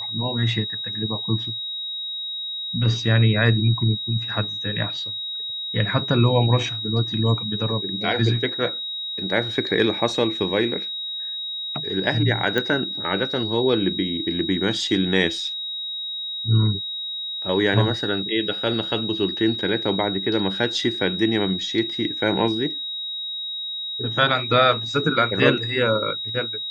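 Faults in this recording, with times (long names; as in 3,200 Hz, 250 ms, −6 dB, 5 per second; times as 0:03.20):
whistle 3,800 Hz −27 dBFS
0:12.58: click −10 dBFS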